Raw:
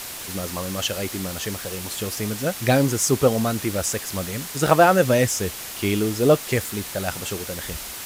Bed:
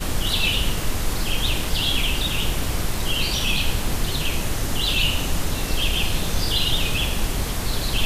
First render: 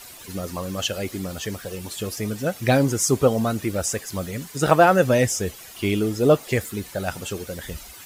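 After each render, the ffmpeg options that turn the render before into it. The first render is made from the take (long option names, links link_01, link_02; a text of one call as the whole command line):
ffmpeg -i in.wav -af "afftdn=noise_reduction=12:noise_floor=-35" out.wav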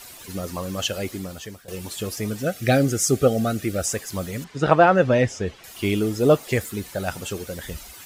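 ffmpeg -i in.wav -filter_complex "[0:a]asettb=1/sr,asplit=3[link_01][link_02][link_03];[link_01]atrim=end=2.434[link_04];[link_02]atrim=start=2.43:end=3.85,asetpts=PTS-STARTPTS,afade=type=in:duration=0.004:curve=qsin,afade=type=out:start_time=1.416:duration=0.004:curve=qsin,asuperstop=centerf=960:order=8:qfactor=2.8[link_05];[link_03]atrim=start=3.846[link_06];[link_04][link_05]acrossfade=duration=0.004:curve1=hsin:curve2=qsin[link_07];[link_07][link_06]acrossfade=duration=0.004:curve1=qsin:curve2=hsin,asettb=1/sr,asplit=3[link_08][link_09][link_10];[link_08]atrim=end=4.444[link_11];[link_09]atrim=start=4.44:end=5.64,asetpts=PTS-STARTPTS,afade=type=in:duration=0.004:curve=qsin,afade=type=out:start_time=1.196:duration=0.004:curve=qsin,lowpass=3600[link_12];[link_10]atrim=start=5.636[link_13];[link_11][link_12]acrossfade=duration=0.004:curve1=hsin:curve2=qsin[link_14];[link_14][link_13]acrossfade=duration=0.004:curve1=qsin:curve2=hsin,asplit=2[link_15][link_16];[link_15]atrim=end=1.68,asetpts=PTS-STARTPTS,afade=type=out:start_time=1.05:duration=0.63:silence=0.158489[link_17];[link_16]atrim=start=1.68,asetpts=PTS-STARTPTS,afade=type=in:duration=0.004:curve=hsin:silence=0.158489[link_18];[link_17][link_18]concat=n=2:v=0:a=1" out.wav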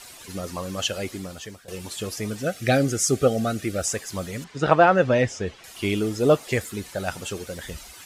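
ffmpeg -i in.wav -af "lowpass=11000,lowshelf=frequency=460:gain=-3" out.wav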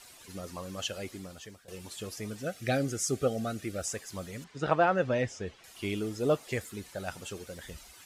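ffmpeg -i in.wav -af "volume=-9dB" out.wav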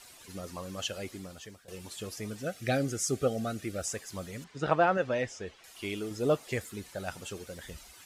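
ffmpeg -i in.wav -filter_complex "[0:a]asettb=1/sr,asplit=3[link_01][link_02][link_03];[link_01]atrim=end=4.974[link_04];[link_02]atrim=start=4.97:end=6.11,asetpts=PTS-STARTPTS,afade=type=in:duration=0.004:curve=qsin,afade=type=out:start_time=1.136:duration=0.004:curve=qsin,equalizer=frequency=120:width=0.5:gain=-6.5[link_05];[link_03]atrim=start=6.106[link_06];[link_04][link_05]acrossfade=duration=0.004:curve1=hsin:curve2=qsin[link_07];[link_07][link_06]acrossfade=duration=0.004:curve1=qsin:curve2=hsin" out.wav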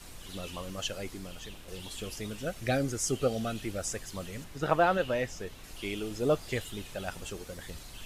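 ffmpeg -i in.wav -i bed.wav -filter_complex "[1:a]volume=-25dB[link_01];[0:a][link_01]amix=inputs=2:normalize=0" out.wav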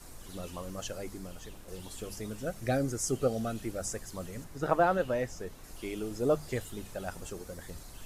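ffmpeg -i in.wav -af "equalizer=frequency=3000:width=1.1:gain=-9.5,bandreject=frequency=50:width_type=h:width=6,bandreject=frequency=100:width_type=h:width=6,bandreject=frequency=150:width_type=h:width=6,bandreject=frequency=200:width_type=h:width=6" out.wav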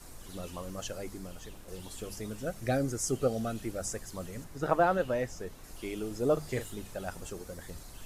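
ffmpeg -i in.wav -filter_complex "[0:a]asettb=1/sr,asplit=3[link_01][link_02][link_03];[link_01]atrim=end=6.334[link_04];[link_02]atrim=start=6.33:end=6.75,asetpts=PTS-STARTPTS,afade=type=in:duration=0.004:curve=qsin,afade=type=out:start_time=0.416:duration=0.004:curve=qsin,asplit=2[link_05][link_06];[link_06]adelay=39,volume=-8dB[link_07];[link_05][link_07]amix=inputs=2:normalize=0,atrim=end_sample=18522[link_08];[link_03]atrim=start=6.746[link_09];[link_04][link_08]acrossfade=duration=0.004:curve1=hsin:curve2=qsin[link_10];[link_10][link_09]acrossfade=duration=0.004:curve1=qsin:curve2=hsin" out.wav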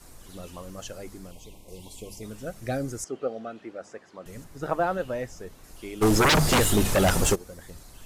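ffmpeg -i in.wav -filter_complex "[0:a]asettb=1/sr,asplit=3[link_01][link_02][link_03];[link_01]atrim=end=1.314[link_04];[link_02]atrim=start=1.31:end=2.23,asetpts=PTS-STARTPTS,afade=type=in:duration=0.004:curve=qsin,afade=type=out:start_time=0.916:duration=0.004:curve=qsin,asuperstop=centerf=1500:order=20:qfactor=1.6[link_05];[link_03]atrim=start=2.226[link_06];[link_04][link_05]acrossfade=duration=0.004:curve1=hsin:curve2=qsin[link_07];[link_07][link_06]acrossfade=duration=0.004:curve1=qsin:curve2=hsin,asettb=1/sr,asplit=3[link_08][link_09][link_10];[link_08]atrim=end=3.044[link_11];[link_09]atrim=start=3.04:end=4.26,asetpts=PTS-STARTPTS,afade=type=in:duration=0.004:curve=qsin,afade=type=out:start_time=1.216:duration=0.004:curve=qsin,highpass=300,lowpass=2600[link_12];[link_10]atrim=start=4.256[link_13];[link_11][link_12]acrossfade=duration=0.004:curve1=hsin:curve2=qsin[link_14];[link_14][link_13]acrossfade=duration=0.004:curve1=qsin:curve2=hsin,asplit=3[link_15][link_16][link_17];[link_15]afade=type=out:start_time=6.01:duration=0.02[link_18];[link_16]aeval=exprs='0.168*sin(PI/2*7.94*val(0)/0.168)':channel_layout=same,afade=type=in:start_time=6.01:duration=0.02,afade=type=out:start_time=7.34:duration=0.02[link_19];[link_17]afade=type=in:start_time=7.34:duration=0.02[link_20];[link_18][link_19][link_20]amix=inputs=3:normalize=0" out.wav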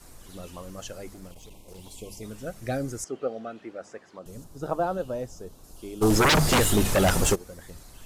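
ffmpeg -i in.wav -filter_complex "[0:a]asettb=1/sr,asplit=3[link_01][link_02][link_03];[link_01]atrim=end=1.134[link_04];[link_02]atrim=start=1.13:end=1.92,asetpts=PTS-STARTPTS,afade=type=in:duration=0.004:curve=qsin,afade=type=out:start_time=0.786:duration=0.004:curve=qsin,aeval=exprs='clip(val(0),-1,0.00708)':channel_layout=same[link_05];[link_03]atrim=start=1.916[link_06];[link_04][link_05]acrossfade=duration=0.004:curve1=hsin:curve2=qsin[link_07];[link_07][link_06]acrossfade=duration=0.004:curve1=qsin:curve2=hsin,asettb=1/sr,asplit=3[link_08][link_09][link_10];[link_08]atrim=end=4.194[link_11];[link_09]atrim=start=4.19:end=6.1,asetpts=PTS-STARTPTS,afade=type=in:duration=0.004:curve=qsin,afade=type=out:start_time=1.906:duration=0.004:curve=qsin,equalizer=frequency=2000:width=1.7:gain=-14.5[link_12];[link_10]atrim=start=6.096[link_13];[link_11][link_12]acrossfade=duration=0.004:curve1=hsin:curve2=qsin[link_14];[link_14][link_13]acrossfade=duration=0.004:curve1=qsin:curve2=hsin" out.wav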